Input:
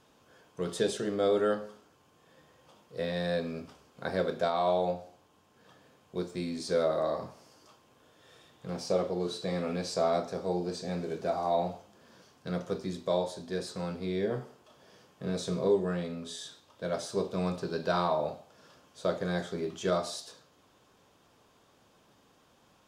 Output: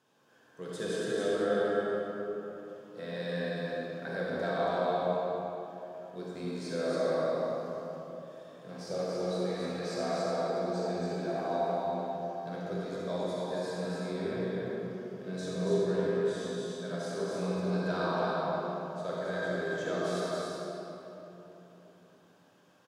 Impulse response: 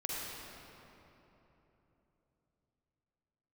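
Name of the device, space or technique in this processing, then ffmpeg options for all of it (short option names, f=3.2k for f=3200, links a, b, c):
stadium PA: -filter_complex "[0:a]highpass=f=120:w=0.5412,highpass=f=120:w=1.3066,equalizer=f=1.6k:t=o:w=0.21:g=6.5,aecho=1:1:198.3|279.9:0.282|0.708[a];[1:a]atrim=start_sample=2205[b];[a][b]afir=irnorm=-1:irlink=0,volume=-6.5dB"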